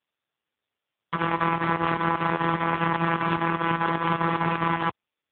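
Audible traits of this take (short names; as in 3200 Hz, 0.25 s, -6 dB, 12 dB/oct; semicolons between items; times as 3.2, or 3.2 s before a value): chopped level 5 Hz, depth 60%, duty 80%; AMR-NB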